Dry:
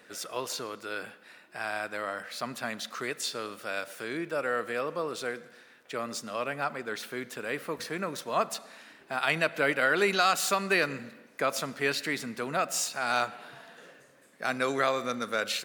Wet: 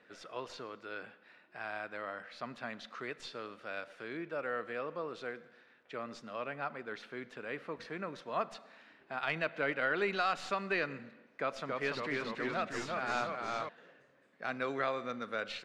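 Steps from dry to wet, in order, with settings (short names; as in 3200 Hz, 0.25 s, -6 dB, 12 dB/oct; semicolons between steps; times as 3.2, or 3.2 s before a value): tracing distortion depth 0.02 ms; LPF 3300 Hz 12 dB/oct; 11.4–13.69 echoes that change speed 0.278 s, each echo -1 st, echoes 3; gain -7 dB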